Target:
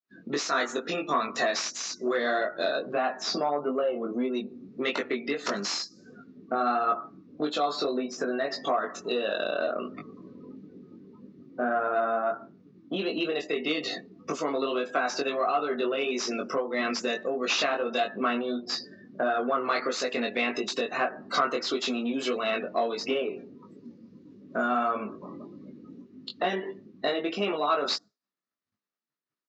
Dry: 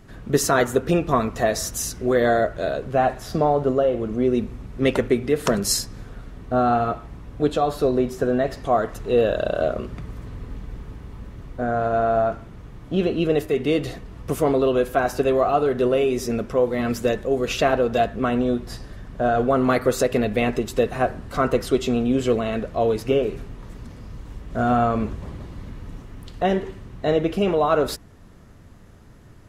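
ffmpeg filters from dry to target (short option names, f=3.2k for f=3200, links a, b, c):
-af "agate=range=-33dB:threshold=-37dB:ratio=3:detection=peak,aemphasis=mode=production:type=75kf,afftdn=nr=33:nf=-37,acompressor=threshold=-26dB:ratio=10,flanger=delay=19.5:depth=2.1:speed=1.6,crystalizer=i=5.5:c=0,aresample=16000,asoftclip=type=tanh:threshold=-20dB,aresample=44100,highpass=f=230:w=0.5412,highpass=f=230:w=1.3066,equalizer=f=460:t=q:w=4:g=-3,equalizer=f=1.2k:t=q:w=4:g=5,equalizer=f=3.2k:t=q:w=4:g=-6,lowpass=f=4.2k:w=0.5412,lowpass=f=4.2k:w=1.3066,volume=5dB"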